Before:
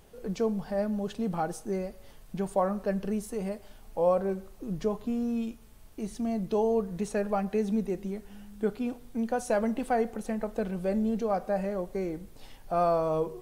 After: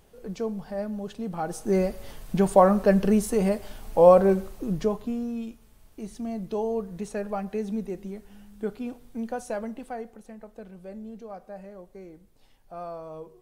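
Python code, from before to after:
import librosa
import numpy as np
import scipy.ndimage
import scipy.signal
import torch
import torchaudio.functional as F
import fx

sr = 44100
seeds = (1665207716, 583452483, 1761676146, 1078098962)

y = fx.gain(x, sr, db=fx.line((1.35, -2.0), (1.79, 10.0), (4.4, 10.0), (5.33, -2.0), (9.28, -2.0), (10.27, -12.0)))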